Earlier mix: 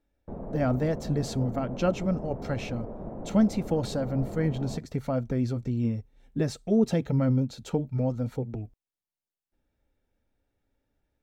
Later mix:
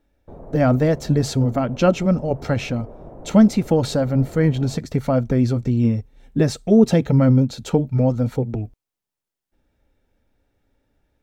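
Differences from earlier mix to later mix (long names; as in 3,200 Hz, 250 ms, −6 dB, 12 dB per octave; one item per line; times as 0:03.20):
speech +9.5 dB
background: add parametric band 210 Hz −9 dB 0.42 octaves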